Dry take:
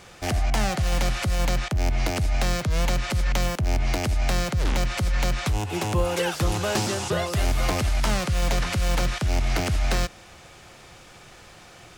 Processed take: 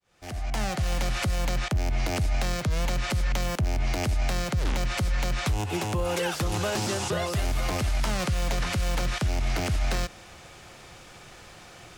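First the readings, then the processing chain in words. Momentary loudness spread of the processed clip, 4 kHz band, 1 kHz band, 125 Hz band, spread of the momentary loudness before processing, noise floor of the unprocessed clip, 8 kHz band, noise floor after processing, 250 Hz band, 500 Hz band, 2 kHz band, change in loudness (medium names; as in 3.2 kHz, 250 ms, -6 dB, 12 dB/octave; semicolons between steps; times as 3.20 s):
19 LU, -3.0 dB, -3.0 dB, -3.0 dB, 2 LU, -48 dBFS, -3.0 dB, -48 dBFS, -3.0 dB, -3.0 dB, -2.5 dB, -3.0 dB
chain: fade-in on the opening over 1.09 s; peak limiter -18.5 dBFS, peak gain reduction 6.5 dB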